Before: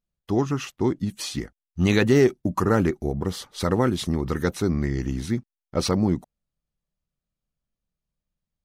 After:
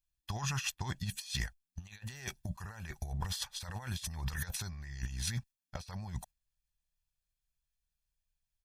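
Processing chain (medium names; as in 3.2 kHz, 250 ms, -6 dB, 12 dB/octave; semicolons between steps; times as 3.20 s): gate -41 dBFS, range -7 dB; amplifier tone stack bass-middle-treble 10-0-10; comb 1.2 ms, depth 55%; compressor with a negative ratio -40 dBFS, ratio -0.5; trim +2 dB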